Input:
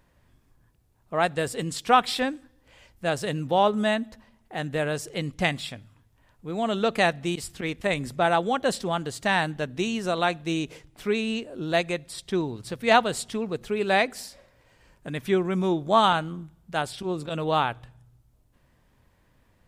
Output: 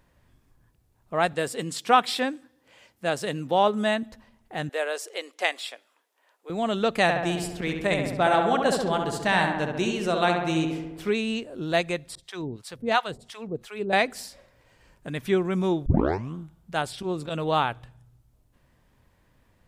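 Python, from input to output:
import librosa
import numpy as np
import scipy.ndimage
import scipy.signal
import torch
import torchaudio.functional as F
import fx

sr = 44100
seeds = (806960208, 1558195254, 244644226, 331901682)

y = fx.highpass(x, sr, hz=170.0, slope=12, at=(1.33, 4.03))
y = fx.cheby2_highpass(y, sr, hz=160.0, order=4, stop_db=50, at=(4.69, 6.5))
y = fx.echo_filtered(y, sr, ms=68, feedback_pct=69, hz=2600.0, wet_db=-4, at=(7.02, 11.1))
y = fx.harmonic_tremolo(y, sr, hz=2.9, depth_pct=100, crossover_hz=680.0, at=(12.15, 13.93))
y = fx.edit(y, sr, fx.tape_start(start_s=15.86, length_s=0.49), tone=tone)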